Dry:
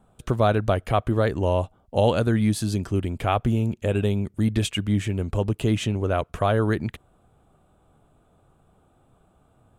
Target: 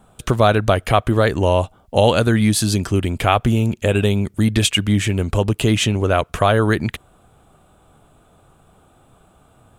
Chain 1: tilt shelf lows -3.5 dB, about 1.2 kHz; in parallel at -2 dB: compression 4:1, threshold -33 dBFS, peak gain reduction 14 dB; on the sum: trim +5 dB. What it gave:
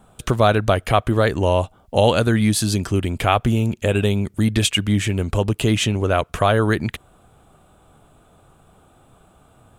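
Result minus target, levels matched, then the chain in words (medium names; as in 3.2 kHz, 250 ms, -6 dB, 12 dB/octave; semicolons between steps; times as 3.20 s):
compression: peak gain reduction +6.5 dB
tilt shelf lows -3.5 dB, about 1.2 kHz; in parallel at -2 dB: compression 4:1, threshold -24.5 dBFS, peak gain reduction 7.5 dB; on the sum: trim +5 dB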